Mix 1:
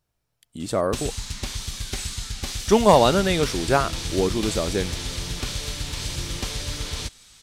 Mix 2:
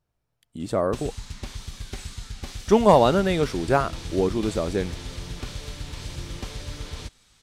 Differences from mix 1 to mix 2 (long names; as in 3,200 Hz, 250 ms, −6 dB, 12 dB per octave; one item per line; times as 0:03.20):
background −3.5 dB
master: add high-shelf EQ 2,500 Hz −8.5 dB